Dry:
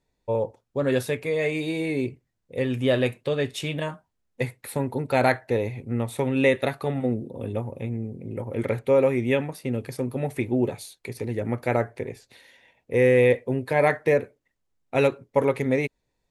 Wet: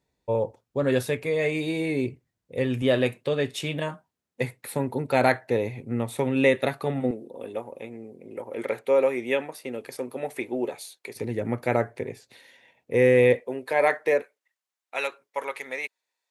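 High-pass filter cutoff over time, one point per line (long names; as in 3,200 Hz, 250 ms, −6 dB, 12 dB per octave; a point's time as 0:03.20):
56 Hz
from 0:02.82 120 Hz
from 0:07.11 390 Hz
from 0:11.16 110 Hz
from 0:13.40 410 Hz
from 0:14.22 1,000 Hz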